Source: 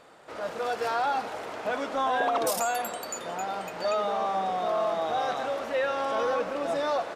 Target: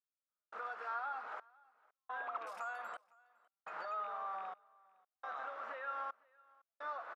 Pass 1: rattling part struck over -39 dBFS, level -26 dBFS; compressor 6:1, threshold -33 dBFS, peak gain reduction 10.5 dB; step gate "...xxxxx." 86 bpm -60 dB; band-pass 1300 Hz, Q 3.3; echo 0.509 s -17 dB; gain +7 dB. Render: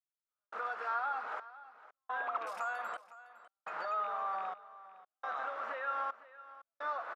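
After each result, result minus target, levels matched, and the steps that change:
echo-to-direct +8.5 dB; compressor: peak gain reduction -5.5 dB
change: echo 0.509 s -25.5 dB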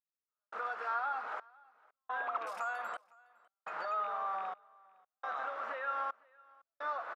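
compressor: peak gain reduction -5.5 dB
change: compressor 6:1, threshold -39.5 dBFS, peak gain reduction 16 dB

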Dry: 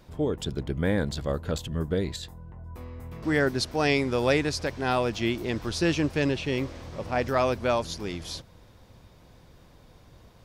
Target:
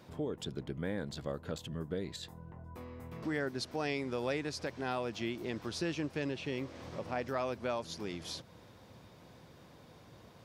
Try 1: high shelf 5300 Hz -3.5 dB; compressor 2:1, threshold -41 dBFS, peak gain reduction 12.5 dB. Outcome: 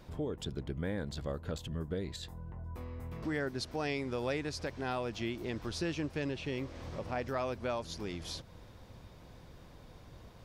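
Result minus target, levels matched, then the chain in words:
125 Hz band +2.5 dB
high shelf 5300 Hz -3.5 dB; compressor 2:1, threshold -41 dBFS, peak gain reduction 12.5 dB; HPF 120 Hz 12 dB/oct

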